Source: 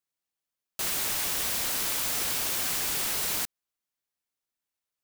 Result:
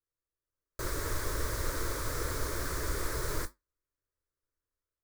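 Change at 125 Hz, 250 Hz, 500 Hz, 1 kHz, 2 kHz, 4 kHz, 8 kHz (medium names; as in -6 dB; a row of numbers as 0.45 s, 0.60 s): +10.0 dB, +2.5 dB, +4.5 dB, -1.5 dB, -4.5 dB, -12.0 dB, -10.5 dB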